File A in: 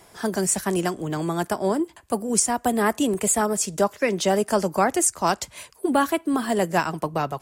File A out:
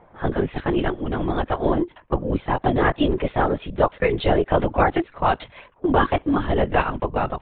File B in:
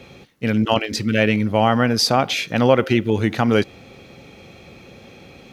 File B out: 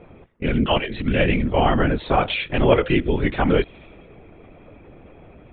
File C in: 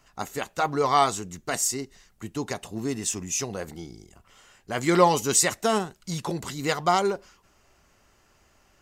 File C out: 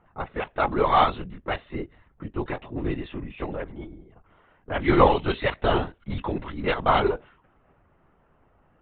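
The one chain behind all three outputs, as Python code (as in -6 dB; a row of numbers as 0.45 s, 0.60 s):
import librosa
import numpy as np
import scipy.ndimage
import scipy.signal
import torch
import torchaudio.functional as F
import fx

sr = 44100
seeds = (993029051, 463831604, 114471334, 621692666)

y = fx.lpc_vocoder(x, sr, seeds[0], excitation='whisper', order=16)
y = fx.env_lowpass(y, sr, base_hz=1200.0, full_db=-18.0)
y = y * 10.0 ** (-3 / 20.0) / np.max(np.abs(y))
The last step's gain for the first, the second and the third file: +2.5 dB, -1.0 dB, +1.5 dB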